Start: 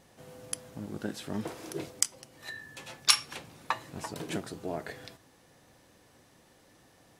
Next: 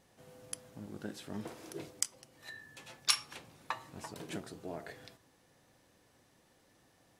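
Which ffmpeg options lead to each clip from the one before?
-af "bandreject=f=76.39:t=h:w=4,bandreject=f=152.78:t=h:w=4,bandreject=f=229.17:t=h:w=4,bandreject=f=305.56:t=h:w=4,bandreject=f=381.95:t=h:w=4,bandreject=f=458.34:t=h:w=4,bandreject=f=534.73:t=h:w=4,bandreject=f=611.12:t=h:w=4,bandreject=f=687.51:t=h:w=4,bandreject=f=763.9:t=h:w=4,bandreject=f=840.29:t=h:w=4,bandreject=f=916.68:t=h:w=4,bandreject=f=993.07:t=h:w=4,bandreject=f=1.06946k:t=h:w=4,bandreject=f=1.14585k:t=h:w=4,bandreject=f=1.22224k:t=h:w=4,bandreject=f=1.29863k:t=h:w=4,volume=-6.5dB"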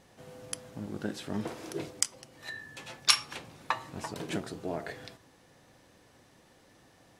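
-af "highshelf=f=10k:g=-8,volume=7.5dB"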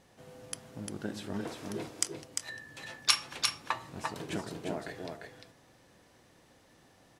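-af "aecho=1:1:349:0.596,volume=-2.5dB"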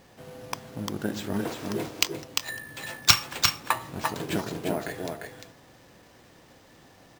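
-af "acrusher=samples=4:mix=1:aa=0.000001,volume=7.5dB"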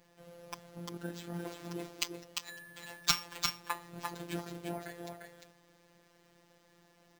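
-af "afftfilt=real='hypot(re,im)*cos(PI*b)':imag='0':win_size=1024:overlap=0.75,volume=-7.5dB"

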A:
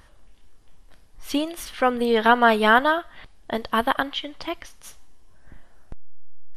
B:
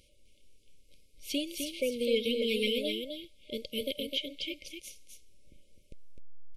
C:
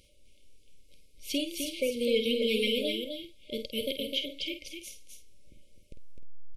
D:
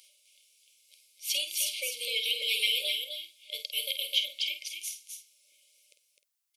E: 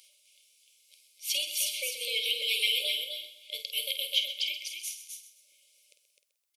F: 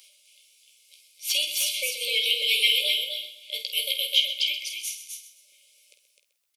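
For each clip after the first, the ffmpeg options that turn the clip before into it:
-af "afftfilt=real='re*(1-between(b*sr/4096,610,2100))':imag='im*(1-between(b*sr/4096,610,2100))':win_size=4096:overlap=0.75,lowshelf=f=400:g=-10,aecho=1:1:256:0.501,volume=-3.5dB"
-filter_complex "[0:a]asplit=2[a][b];[b]adelay=50,volume=-9dB[c];[a][c]amix=inputs=2:normalize=0,volume=1.5dB"
-af "highpass=f=780:w=0.5412,highpass=f=780:w=1.3066,highshelf=f=3.3k:g=10"
-af "aecho=1:1:129|258|387|516:0.237|0.0854|0.0307|0.0111"
-filter_complex "[0:a]acrossover=split=680|1200|5100[a][b][c][d];[c]asplit=2[e][f];[f]adelay=16,volume=-2.5dB[g];[e][g]amix=inputs=2:normalize=0[h];[d]asoftclip=type=hard:threshold=-27.5dB[i];[a][b][h][i]amix=inputs=4:normalize=0,volume=4.5dB"

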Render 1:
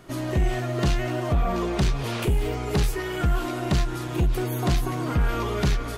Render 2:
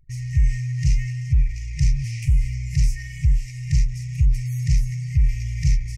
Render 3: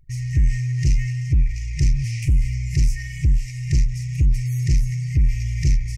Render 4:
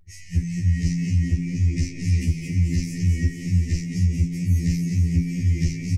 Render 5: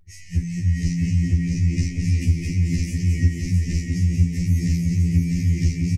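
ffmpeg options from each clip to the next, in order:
-af "afftfilt=real='re*(1-between(b*sr/4096,160,1800))':imag='im*(1-between(b*sr/4096,160,1800))':win_size=4096:overlap=0.75,anlmdn=0.0631,firequalizer=gain_entry='entry(120,0);entry(210,-6);entry(380,13);entry(560,-26);entry(860,-23);entry(1600,-9);entry(2300,-7);entry(3500,-26);entry(5400,-1);entry(13000,-20)':delay=0.05:min_phase=1,volume=5.5dB"
-af "asoftclip=type=tanh:threshold=-13dB,volume=3dB"
-filter_complex "[0:a]asplit=8[a][b][c][d][e][f][g][h];[b]adelay=220,afreqshift=47,volume=-6dB[i];[c]adelay=440,afreqshift=94,volume=-11.2dB[j];[d]adelay=660,afreqshift=141,volume=-16.4dB[k];[e]adelay=880,afreqshift=188,volume=-21.6dB[l];[f]adelay=1100,afreqshift=235,volume=-26.8dB[m];[g]adelay=1320,afreqshift=282,volume=-32dB[n];[h]adelay=1540,afreqshift=329,volume=-37.2dB[o];[a][i][j][k][l][m][n][o]amix=inputs=8:normalize=0,afftfilt=real='re*2*eq(mod(b,4),0)':imag='im*2*eq(mod(b,4),0)':win_size=2048:overlap=0.75"
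-af "aecho=1:1:656:0.596"

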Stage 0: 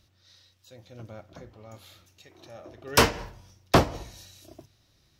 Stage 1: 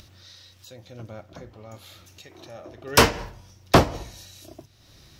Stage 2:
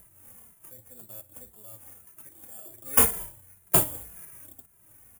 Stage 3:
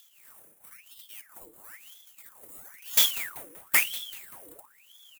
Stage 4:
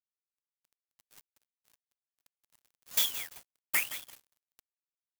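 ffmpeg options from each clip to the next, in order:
-af "acompressor=mode=upward:threshold=-44dB:ratio=2.5,volume=3.5dB"
-filter_complex "[0:a]acrusher=samples=11:mix=1:aa=0.000001,aexciter=amount=7.9:drive=9.7:freq=7.8k,asplit=2[a][b];[b]adelay=2.5,afreqshift=-1.9[c];[a][c]amix=inputs=2:normalize=1,volume=-9dB"
-filter_complex "[0:a]asplit=5[a][b][c][d][e];[b]adelay=192,afreqshift=91,volume=-16dB[f];[c]adelay=384,afreqshift=182,volume=-22.6dB[g];[d]adelay=576,afreqshift=273,volume=-29.1dB[h];[e]adelay=768,afreqshift=364,volume=-35.7dB[i];[a][f][g][h][i]amix=inputs=5:normalize=0,asubboost=boost=6:cutoff=140,aeval=exprs='val(0)*sin(2*PI*1900*n/s+1900*0.8/1*sin(2*PI*1*n/s))':c=same"
-af "aecho=1:1:170|340|510:0.188|0.0659|0.0231,acrusher=bits=4:mix=0:aa=0.5,volume=-7dB"

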